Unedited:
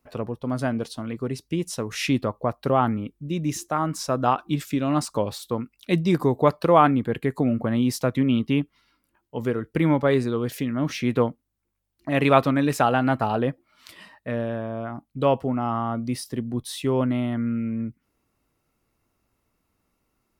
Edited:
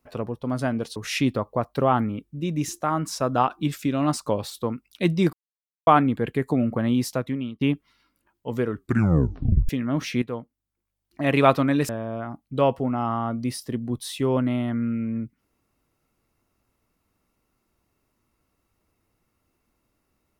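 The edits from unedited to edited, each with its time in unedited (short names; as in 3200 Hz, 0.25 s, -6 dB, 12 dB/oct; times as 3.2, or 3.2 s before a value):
0.96–1.84 cut
6.21–6.75 mute
7.84–8.49 fade out, to -20 dB
9.56 tape stop 1.01 s
11.1–12.15 fade in, from -13 dB
12.77–14.53 cut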